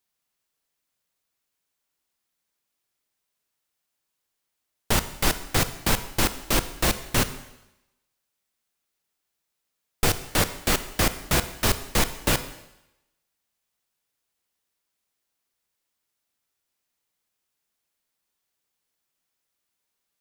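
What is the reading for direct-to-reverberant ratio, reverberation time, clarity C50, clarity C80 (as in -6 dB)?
11.5 dB, 0.90 s, 13.0 dB, 15.0 dB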